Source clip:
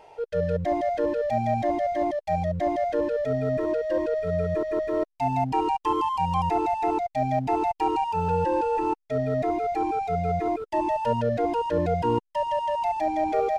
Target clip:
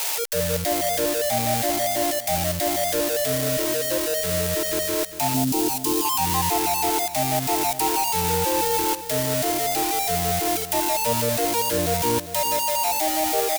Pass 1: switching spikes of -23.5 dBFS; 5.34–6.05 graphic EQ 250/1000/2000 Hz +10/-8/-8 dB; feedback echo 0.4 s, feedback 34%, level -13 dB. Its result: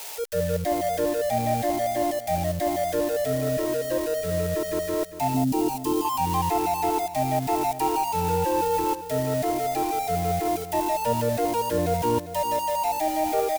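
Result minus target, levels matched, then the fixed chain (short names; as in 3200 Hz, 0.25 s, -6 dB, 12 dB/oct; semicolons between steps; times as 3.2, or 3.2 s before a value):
switching spikes: distortion -11 dB
switching spikes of -12 dBFS; 5.34–6.05 graphic EQ 250/1000/2000 Hz +10/-8/-8 dB; feedback echo 0.4 s, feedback 34%, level -13 dB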